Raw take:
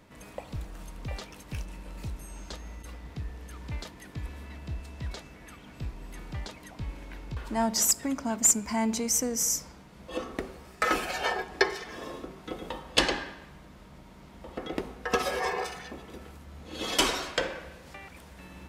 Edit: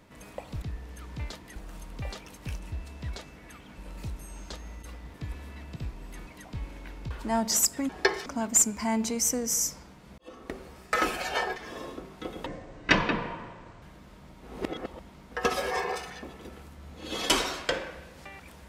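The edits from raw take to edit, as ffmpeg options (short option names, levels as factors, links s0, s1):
-filter_complex "[0:a]asplit=16[s0][s1][s2][s3][s4][s5][s6][s7][s8][s9][s10][s11][s12][s13][s14][s15];[s0]atrim=end=0.622[s16];[s1]atrim=start=3.138:end=4.082[s17];[s2]atrim=start=0.618:end=1.782[s18];[s3]atrim=start=4.698:end=5.762[s19];[s4]atrim=start=1.778:end=3.142[s20];[s5]atrim=start=4.078:end=4.702[s21];[s6]atrim=start=5.758:end=6.272[s22];[s7]atrim=start=6.528:end=8.152[s23];[s8]atrim=start=11.448:end=11.822[s24];[s9]atrim=start=8.148:end=10.07,asetpts=PTS-STARTPTS,afade=t=out:st=1.918:d=0.004:c=hsin[s25];[s10]atrim=start=10.07:end=11.452,asetpts=PTS-STARTPTS,afade=t=in:d=0.5[s26];[s11]atrim=start=11.818:end=12.724[s27];[s12]atrim=start=12.72:end=13.51,asetpts=PTS-STARTPTS,asetrate=25578,aresample=44100,atrim=end_sample=60067,asetpts=PTS-STARTPTS[s28];[s13]atrim=start=13.506:end=14.122[s29];[s14]atrim=start=14.118:end=15.002,asetpts=PTS-STARTPTS,areverse[s30];[s15]atrim=start=14.998[s31];[s16][s17]acrossfade=d=0.004:c1=hsin:c2=hsin[s32];[s32][s18]acrossfade=d=0.004:c1=hsin:c2=hsin[s33];[s33][s19]acrossfade=d=0.004:c1=hsin:c2=hsin[s34];[s34][s20]acrossfade=d=0.004:c1=hsin:c2=hsin[s35];[s35][s21]acrossfade=d=0.004:c1=hsin:c2=hsin[s36];[s36][s22]acrossfade=d=0.004:c1=hsin:c2=hsin[s37];[s37][s23]acrossfade=d=0.004:c1=hsin:c2=hsin[s38];[s38][s24]acrossfade=d=0.004:c1=hsin:c2=hsin[s39];[s25][s26]concat=n=2:v=0:a=1[s40];[s39][s40]acrossfade=d=0.004:c1=hsin:c2=hsin[s41];[s41][s27]acrossfade=d=0.004:c1=hsin:c2=hsin[s42];[s42][s28]acrossfade=d=0.004:c1=hsin:c2=hsin[s43];[s43][s29]acrossfade=d=0.004:c1=hsin:c2=hsin[s44];[s44][s30]acrossfade=d=0.004:c1=hsin:c2=hsin[s45];[s45][s31]acrossfade=d=0.004:c1=hsin:c2=hsin"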